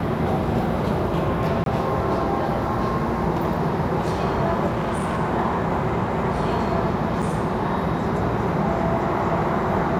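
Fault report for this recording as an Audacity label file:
1.640000	1.660000	drop-out 22 ms
4.660000	5.190000	clipping −20 dBFS
7.220000	7.230000	drop-out 5.8 ms

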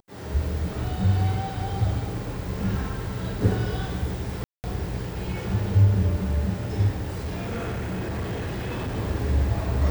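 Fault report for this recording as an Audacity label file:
4.440000	4.640000	drop-out 199 ms
7.120000	8.980000	clipping −25.5 dBFS

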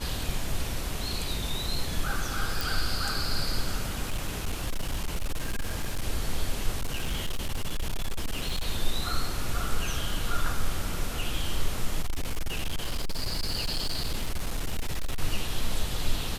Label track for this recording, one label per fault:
2.610000	2.610000	click
4.070000	6.030000	clipping −24.5 dBFS
6.800000	8.650000	clipping −24.5 dBFS
12.020000	15.210000	clipping −24 dBFS

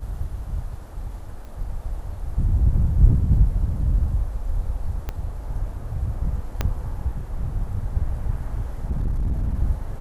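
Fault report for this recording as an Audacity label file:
1.450000	1.450000	click −29 dBFS
5.090000	5.090000	click −15 dBFS
6.610000	6.610000	click −9 dBFS
8.900000	9.590000	clipping −19.5 dBFS

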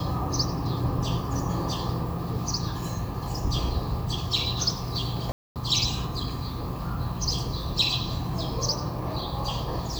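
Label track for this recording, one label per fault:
5.320000	5.560000	drop-out 238 ms

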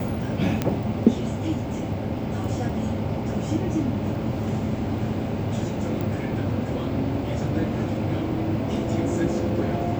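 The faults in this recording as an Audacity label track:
0.620000	0.620000	click −9 dBFS
6.010000	6.010000	click

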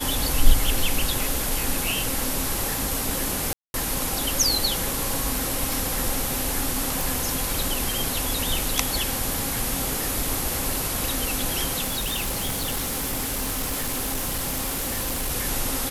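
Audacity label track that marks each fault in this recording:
3.530000	3.740000	drop-out 211 ms
5.730000	5.730000	click
7.010000	7.010000	click
11.840000	15.320000	clipping −23 dBFS

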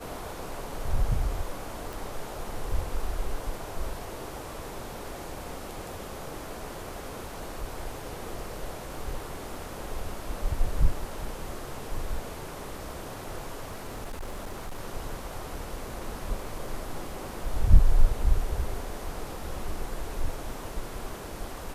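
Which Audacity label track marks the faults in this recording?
1.930000	1.930000	click
13.670000	14.800000	clipping −31.5 dBFS

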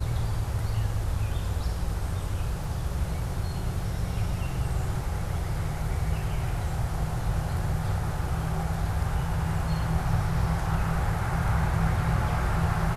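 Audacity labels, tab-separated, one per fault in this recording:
2.640000	2.640000	drop-out 2.2 ms

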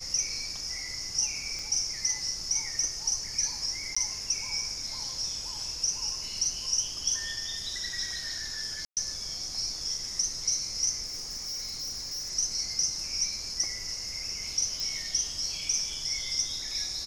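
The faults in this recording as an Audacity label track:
1.590000	1.590000	click
3.950000	3.960000	drop-out 15 ms
8.850000	8.970000	drop-out 118 ms
11.050000	12.310000	clipping −32.5 dBFS
14.800000	14.800000	click

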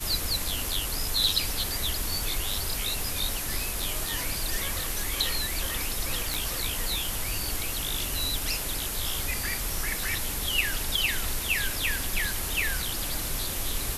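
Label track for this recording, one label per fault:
6.340000	6.340000	click

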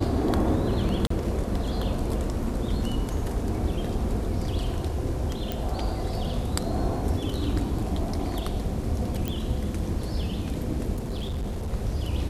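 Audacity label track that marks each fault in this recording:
1.070000	1.100000	drop-out 34 ms
5.520000	5.520000	click
9.280000	9.280000	click −15 dBFS
10.950000	11.730000	clipping −26.5 dBFS

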